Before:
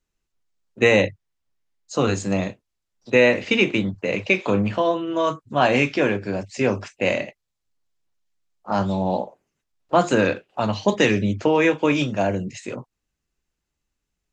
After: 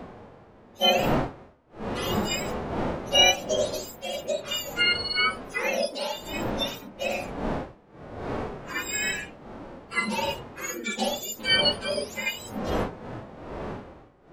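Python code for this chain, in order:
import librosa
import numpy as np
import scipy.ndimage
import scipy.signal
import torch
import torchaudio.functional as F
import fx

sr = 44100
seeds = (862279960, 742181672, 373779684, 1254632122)

y = fx.octave_mirror(x, sr, pivot_hz=1200.0)
y = fx.dmg_wind(y, sr, seeds[0], corner_hz=640.0, level_db=-29.0)
y = fx.hpss(y, sr, part='percussive', gain_db=-18)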